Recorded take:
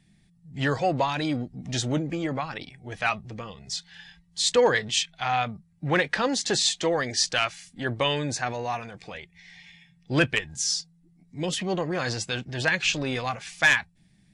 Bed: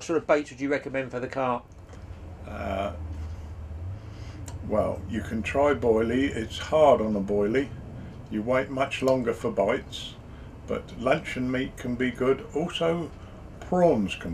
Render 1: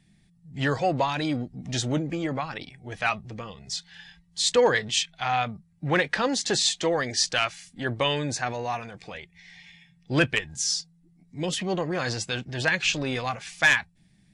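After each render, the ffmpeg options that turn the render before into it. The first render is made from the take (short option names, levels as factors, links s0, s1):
-af anull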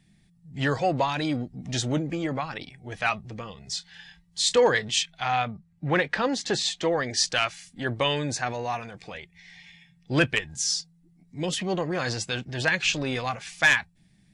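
-filter_complex "[0:a]asettb=1/sr,asplit=3[s0][s1][s2];[s0]atrim=end=3.674[s3];[s1]atrim=start=3.67:end=4.63,asetpts=PTS-STARTPTS,afade=t=in:d=0.004:c=qsin,afade=t=out:st=0.956:d=0.004:c=qsin,asplit=2[s4][s5];[s5]adelay=27,volume=0.237[s6];[s4][s6]amix=inputs=2:normalize=0,atrim=end_sample=42336[s7];[s2]atrim=start=4.626[s8];[s3][s7]acrossfade=d=0.004:c1=hsin:c2=qsin[s9];[s9][s8]acrossfade=d=0.004:c1=qsin:c2=hsin,asettb=1/sr,asplit=3[s10][s11][s12];[s10]atrim=end=5.424[s13];[s11]atrim=start=5.42:end=7.14,asetpts=PTS-STARTPTS,afade=t=in:d=0.004:c=qsin,afade=t=out:st=1.716:d=0.004:c=qsin,lowpass=f=3700:p=1[s14];[s12]atrim=start=7.136[s15];[s13][s14]acrossfade=d=0.004:c1=hsin:c2=qsin[s16];[s16][s15]acrossfade=d=0.004:c1=qsin:c2=hsin"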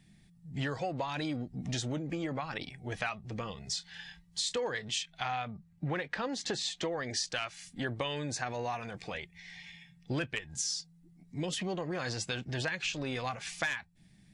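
-af "acompressor=threshold=0.0251:ratio=6"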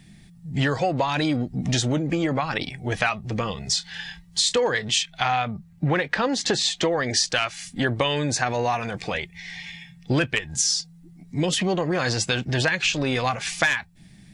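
-af "volume=3.98"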